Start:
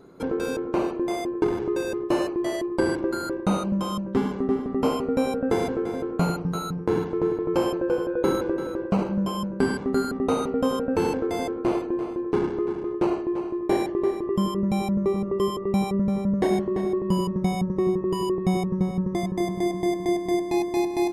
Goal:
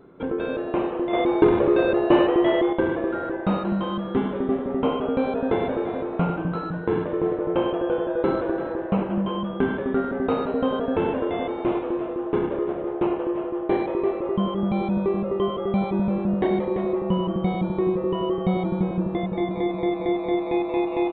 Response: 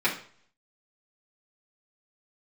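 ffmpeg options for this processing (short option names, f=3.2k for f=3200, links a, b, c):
-filter_complex "[0:a]asplit=6[a][b][c][d][e][f];[b]adelay=180,afreqshift=150,volume=-10dB[g];[c]adelay=360,afreqshift=300,volume=-16.4dB[h];[d]adelay=540,afreqshift=450,volume=-22.8dB[i];[e]adelay=720,afreqshift=600,volume=-29.1dB[j];[f]adelay=900,afreqshift=750,volume=-35.5dB[k];[a][g][h][i][j][k]amix=inputs=6:normalize=0,aresample=8000,aresample=44100,asettb=1/sr,asplit=3[l][m][n];[l]atrim=end=1.134[o];[m]atrim=start=1.13:end=2.73,asetpts=PTS-STARTPTS,afade=t=in:d=0.004:c=qsin,afade=t=out:st=1.596:d=0.004:c=qsin,acontrast=75[p];[n]atrim=start=2.726[q];[o][p]acrossfade=d=0.004:c1=hsin:c2=qsin[r];[r][q]acrossfade=d=0.004:c1=qsin:c2=hsin"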